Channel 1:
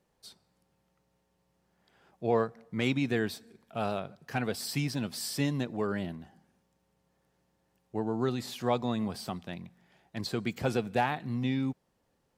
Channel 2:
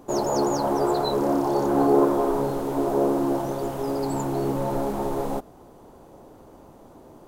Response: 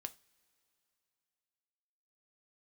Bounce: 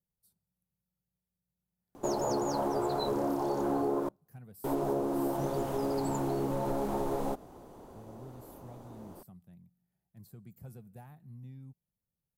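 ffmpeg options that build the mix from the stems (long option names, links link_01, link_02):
-filter_complex "[0:a]firequalizer=gain_entry='entry(180,0);entry(260,-13);entry(3100,-24);entry(12000,8)':delay=0.05:min_phase=1,volume=-12dB[link_01];[1:a]acompressor=threshold=-25dB:ratio=6,adelay=1950,volume=-3.5dB,asplit=3[link_02][link_03][link_04];[link_02]atrim=end=4.09,asetpts=PTS-STARTPTS,afade=type=out:start_time=4.086:duration=0.004:curve=hsin[link_05];[link_03]atrim=start=4.09:end=4.64,asetpts=PTS-STARTPTS,volume=0[link_06];[link_04]atrim=start=4.64,asetpts=PTS-STARTPTS,afade=type=in:duration=0.004:curve=hsin[link_07];[link_05][link_06][link_07]concat=n=3:v=0:a=1,asplit=2[link_08][link_09];[link_09]volume=-16dB[link_10];[2:a]atrim=start_sample=2205[link_11];[link_10][link_11]afir=irnorm=-1:irlink=0[link_12];[link_01][link_08][link_12]amix=inputs=3:normalize=0"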